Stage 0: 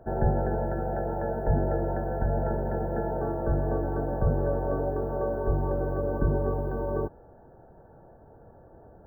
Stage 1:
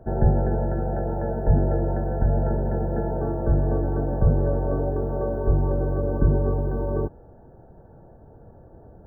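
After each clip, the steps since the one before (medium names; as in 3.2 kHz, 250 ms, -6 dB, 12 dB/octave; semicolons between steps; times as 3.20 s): bass shelf 430 Hz +9 dB; trim -2 dB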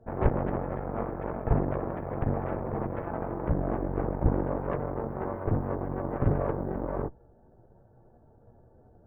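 chorus voices 6, 0.33 Hz, delay 13 ms, depth 5 ms; Chebyshev shaper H 3 -16 dB, 8 -16 dB, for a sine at -8.5 dBFS; trim -1 dB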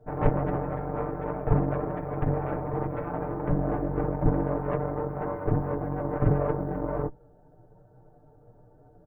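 comb 6.7 ms, depth 80%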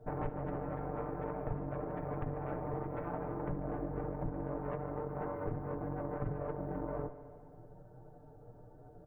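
compression 6:1, threshold -35 dBFS, peak gain reduction 18.5 dB; multi-head delay 73 ms, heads first and second, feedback 69%, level -18 dB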